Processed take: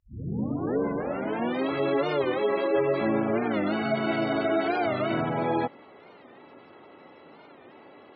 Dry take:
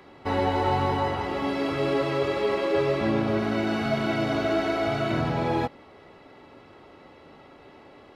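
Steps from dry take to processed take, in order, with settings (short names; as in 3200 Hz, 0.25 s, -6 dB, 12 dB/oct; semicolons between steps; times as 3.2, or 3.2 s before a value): tape start at the beginning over 1.70 s; spectral gate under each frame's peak -25 dB strong; BPF 170–6100 Hz; record warp 45 rpm, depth 160 cents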